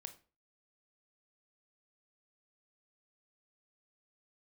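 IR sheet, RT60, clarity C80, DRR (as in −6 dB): 0.35 s, 19.5 dB, 8.5 dB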